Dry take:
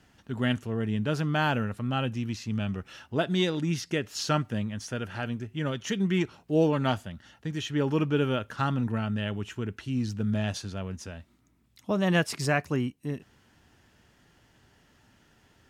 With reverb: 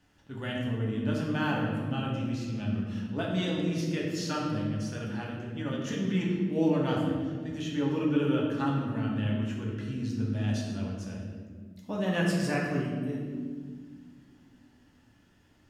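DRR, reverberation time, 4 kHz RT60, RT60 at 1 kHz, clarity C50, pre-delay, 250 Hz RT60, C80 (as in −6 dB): −3.0 dB, 1.7 s, 1.1 s, 1.4 s, 2.0 dB, 3 ms, 3.5 s, 4.0 dB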